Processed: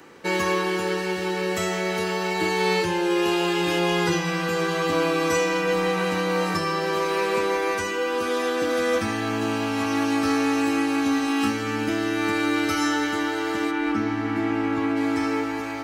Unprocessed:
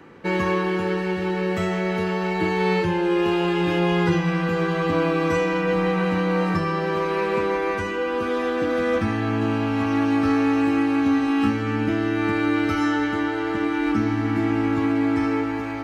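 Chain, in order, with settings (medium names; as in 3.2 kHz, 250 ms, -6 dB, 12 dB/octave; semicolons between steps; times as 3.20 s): tone controls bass -8 dB, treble +14 dB, from 13.70 s treble 0 dB, from 14.96 s treble +10 dB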